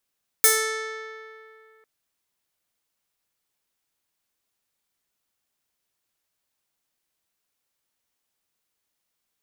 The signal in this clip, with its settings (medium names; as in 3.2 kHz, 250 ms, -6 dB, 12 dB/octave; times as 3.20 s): plucked string A4, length 1.40 s, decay 2.48 s, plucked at 0.45, bright